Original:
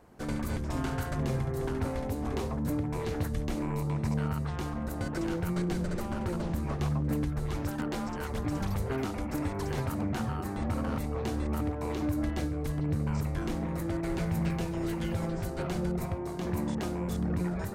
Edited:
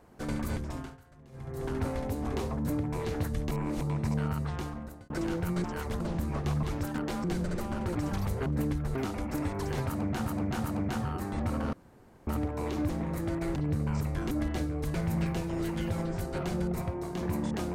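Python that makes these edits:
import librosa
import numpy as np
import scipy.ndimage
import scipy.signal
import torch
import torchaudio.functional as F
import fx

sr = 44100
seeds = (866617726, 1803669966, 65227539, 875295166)

y = fx.edit(x, sr, fx.fade_down_up(start_s=0.53, length_s=1.23, db=-23.5, fade_s=0.45),
    fx.reverse_span(start_s=3.51, length_s=0.3),
    fx.fade_out_span(start_s=4.54, length_s=0.56),
    fx.swap(start_s=5.64, length_s=0.71, other_s=8.08, other_length_s=0.36),
    fx.move(start_s=6.98, length_s=0.49, to_s=8.95),
    fx.repeat(start_s=9.88, length_s=0.38, count=3),
    fx.room_tone_fill(start_s=10.97, length_s=0.54),
    fx.swap(start_s=12.13, length_s=0.63, other_s=13.51, other_length_s=0.67), tone=tone)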